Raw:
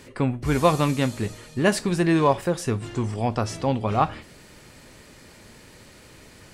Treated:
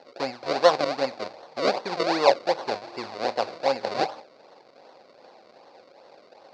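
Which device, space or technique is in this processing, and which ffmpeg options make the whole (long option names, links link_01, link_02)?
circuit-bent sampling toy: -af "acrusher=samples=36:mix=1:aa=0.000001:lfo=1:lforange=36:lforate=2.6,highpass=530,equalizer=frequency=540:width_type=q:width=4:gain=7,equalizer=frequency=780:width_type=q:width=4:gain=6,equalizer=frequency=1300:width_type=q:width=4:gain=-4,equalizer=frequency=1800:width_type=q:width=4:gain=-4,equalizer=frequency=3100:width_type=q:width=4:gain=-9,equalizer=frequency=4500:width_type=q:width=4:gain=8,lowpass=frequency=4900:width=0.5412,lowpass=frequency=4900:width=1.3066"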